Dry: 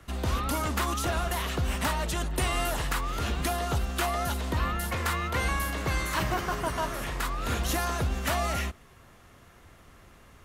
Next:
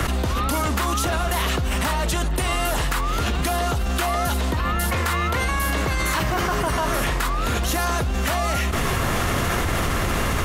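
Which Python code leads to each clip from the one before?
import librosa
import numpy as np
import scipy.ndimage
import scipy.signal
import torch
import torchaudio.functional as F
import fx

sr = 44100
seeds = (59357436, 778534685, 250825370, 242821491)

y = fx.env_flatten(x, sr, amount_pct=100)
y = y * 10.0 ** (2.0 / 20.0)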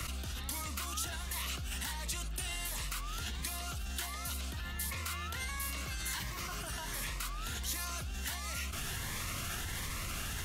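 y = fx.tone_stack(x, sr, knobs='5-5-5')
y = fx.notch_cascade(y, sr, direction='rising', hz=1.4)
y = y * 10.0 ** (-3.0 / 20.0)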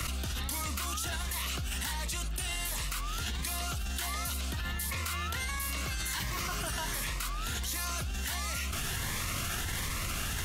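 y = fx.env_flatten(x, sr, amount_pct=100)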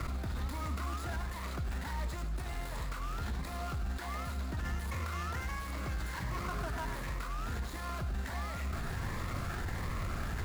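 y = scipy.ndimage.median_filter(x, 15, mode='constant')
y = y + 10.0 ** (-11.0 / 20.0) * np.pad(y, (int(99 * sr / 1000.0), 0))[:len(y)]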